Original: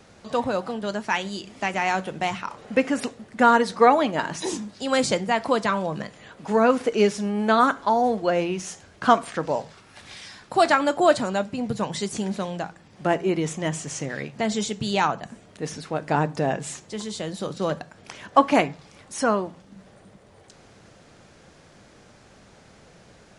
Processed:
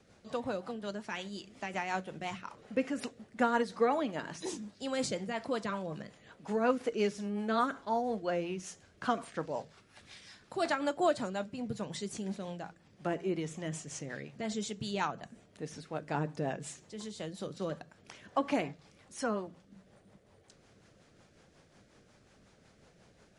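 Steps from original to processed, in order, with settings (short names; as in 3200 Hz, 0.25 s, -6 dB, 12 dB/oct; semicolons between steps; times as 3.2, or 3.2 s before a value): rotary speaker horn 5.5 Hz; gain -9 dB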